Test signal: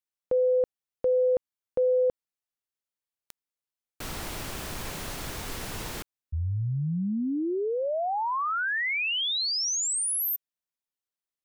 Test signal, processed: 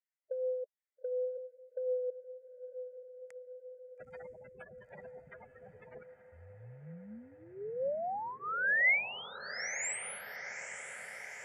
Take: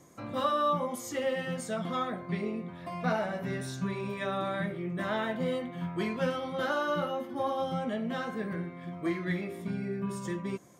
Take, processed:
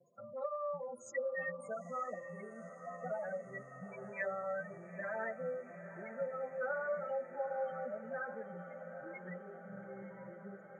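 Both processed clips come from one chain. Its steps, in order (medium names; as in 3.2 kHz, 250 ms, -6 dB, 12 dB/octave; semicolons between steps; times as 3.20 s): spectral gate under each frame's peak -10 dB strong; bass shelf 440 Hz +4 dB; compression, threshold -28 dBFS; harmonic tremolo 4.2 Hz, depth 50%, crossover 1.1 kHz; static phaser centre 1.1 kHz, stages 6; wow and flutter 0.87 Hz 23 cents; cabinet simulation 340–7600 Hz, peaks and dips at 370 Hz -7 dB, 740 Hz -4 dB, 1.2 kHz +5 dB, 2 kHz +9 dB, 2.9 kHz -9 dB, 5.7 kHz -6 dB; echo that smears into a reverb 912 ms, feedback 71%, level -11.5 dB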